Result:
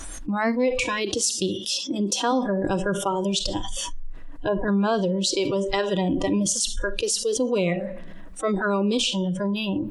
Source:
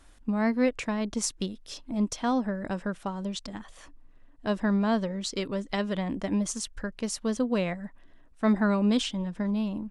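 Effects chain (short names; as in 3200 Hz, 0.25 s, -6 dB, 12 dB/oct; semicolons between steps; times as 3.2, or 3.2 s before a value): vocal rider within 4 dB 2 s; 3.59–4.68 treble ducked by the level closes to 1200 Hz, closed at -24 dBFS; reverb RT60 0.75 s, pre-delay 6 ms, DRR 11 dB; dynamic EQ 400 Hz, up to +5 dB, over -43 dBFS, Q 3.1; spectral noise reduction 21 dB; 0.97–2.31 HPF 71 Hz -> 240 Hz 24 dB/oct; fast leveller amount 70%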